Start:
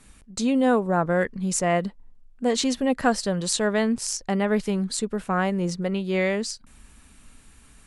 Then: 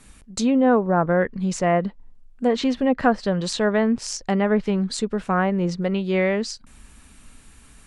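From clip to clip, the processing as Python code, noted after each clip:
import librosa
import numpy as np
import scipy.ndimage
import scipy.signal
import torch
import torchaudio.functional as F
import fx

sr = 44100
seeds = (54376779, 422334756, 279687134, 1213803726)

y = fx.env_lowpass_down(x, sr, base_hz=1800.0, full_db=-17.5)
y = F.gain(torch.from_numpy(y), 3.0).numpy()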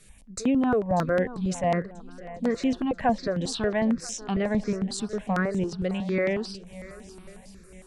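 y = fx.echo_swing(x, sr, ms=985, ratio=1.5, feedback_pct=34, wet_db=-17.0)
y = fx.phaser_held(y, sr, hz=11.0, low_hz=250.0, high_hz=4500.0)
y = F.gain(torch.from_numpy(y), -2.5).numpy()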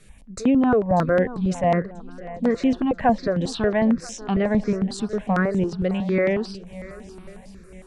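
y = fx.high_shelf(x, sr, hz=3900.0, db=-9.5)
y = F.gain(torch.from_numpy(y), 5.0).numpy()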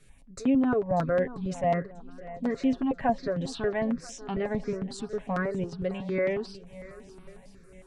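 y = x + 0.46 * np.pad(x, (int(7.3 * sr / 1000.0), 0))[:len(x)]
y = F.gain(torch.from_numpy(y), -8.0).numpy()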